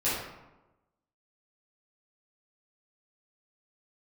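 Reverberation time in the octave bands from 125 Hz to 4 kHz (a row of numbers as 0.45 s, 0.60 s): 1.1 s, 1.1 s, 1.1 s, 1.0 s, 0.80 s, 0.55 s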